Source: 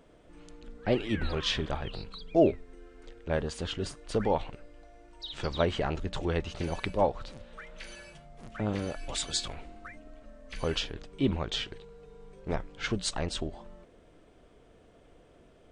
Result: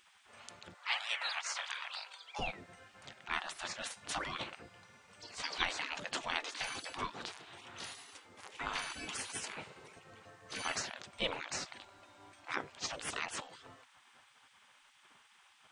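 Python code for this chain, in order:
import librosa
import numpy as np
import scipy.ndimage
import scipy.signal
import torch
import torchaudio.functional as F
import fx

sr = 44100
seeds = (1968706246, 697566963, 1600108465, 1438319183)

y = fx.spec_gate(x, sr, threshold_db=-20, keep='weak')
y = fx.highpass(y, sr, hz=740.0, slope=24, at=(0.74, 2.39))
y = y * 10.0 ** (7.0 / 20.0)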